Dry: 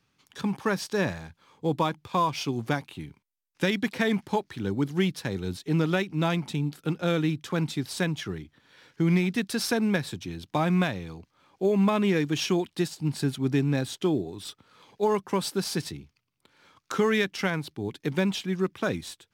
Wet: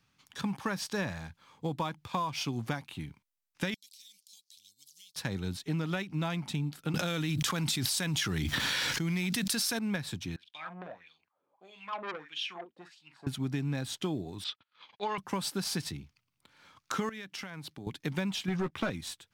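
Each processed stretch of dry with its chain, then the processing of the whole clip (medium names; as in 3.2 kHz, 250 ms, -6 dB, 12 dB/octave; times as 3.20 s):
3.74–5.16 s: inverse Chebyshev high-pass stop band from 1.7 kHz, stop band 50 dB + compression 4:1, threshold -51 dBFS
6.94–9.79 s: treble shelf 3.1 kHz +10 dB + level flattener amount 100%
10.36–13.27 s: doubling 45 ms -8.5 dB + wah-wah 1.6 Hz 410–3400 Hz, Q 5.3 + transformer saturation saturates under 1.8 kHz
14.44–15.18 s: low-pass 3.6 kHz 24 dB/octave + gate -57 dBFS, range -29 dB + tilt EQ +4.5 dB/octave
17.09–17.87 s: high-pass 120 Hz + compression, threshold -37 dBFS
18.48–18.90 s: waveshaping leveller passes 2 + treble shelf 5.9 kHz -9.5 dB + doubling 13 ms -9 dB
whole clip: peaking EQ 400 Hz -7 dB 0.92 oct; compression, threshold -29 dBFS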